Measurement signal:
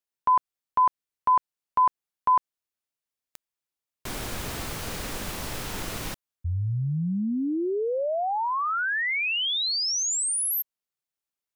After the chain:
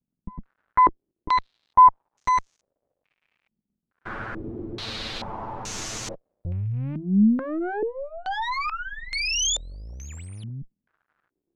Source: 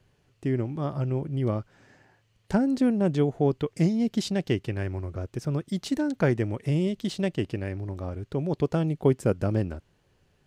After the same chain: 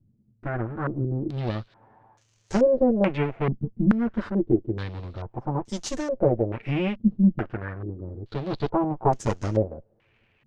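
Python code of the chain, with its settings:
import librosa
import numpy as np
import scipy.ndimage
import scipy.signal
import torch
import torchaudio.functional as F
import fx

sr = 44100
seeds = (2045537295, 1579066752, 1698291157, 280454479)

y = fx.lower_of_two(x, sr, delay_ms=9.0)
y = fx.dmg_crackle(y, sr, seeds[0], per_s=260.0, level_db=-56.0)
y = fx.filter_held_lowpass(y, sr, hz=2.3, low_hz=210.0, high_hz=6500.0)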